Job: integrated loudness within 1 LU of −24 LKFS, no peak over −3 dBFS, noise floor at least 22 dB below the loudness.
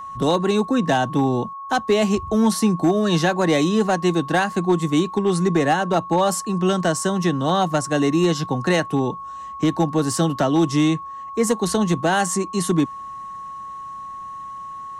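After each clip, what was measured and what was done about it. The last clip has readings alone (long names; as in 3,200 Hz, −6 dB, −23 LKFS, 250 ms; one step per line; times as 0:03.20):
share of clipped samples 0.5%; peaks flattened at −10.5 dBFS; interfering tone 1,100 Hz; level of the tone −31 dBFS; integrated loudness −20.5 LKFS; sample peak −10.5 dBFS; target loudness −24.0 LKFS
→ clipped peaks rebuilt −10.5 dBFS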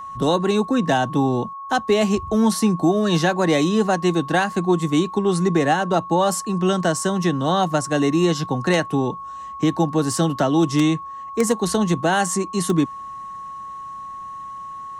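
share of clipped samples 0.0%; interfering tone 1,100 Hz; level of the tone −31 dBFS
→ notch filter 1,100 Hz, Q 30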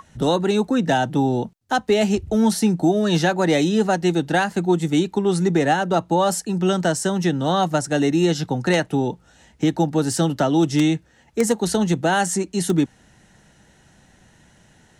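interfering tone none found; integrated loudness −20.5 LKFS; sample peak −2.5 dBFS; target loudness −24.0 LKFS
→ level −3.5 dB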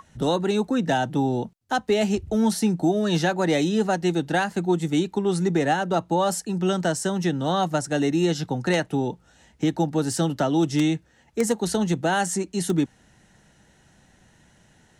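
integrated loudness −24.0 LKFS; sample peak −6.0 dBFS; background noise floor −59 dBFS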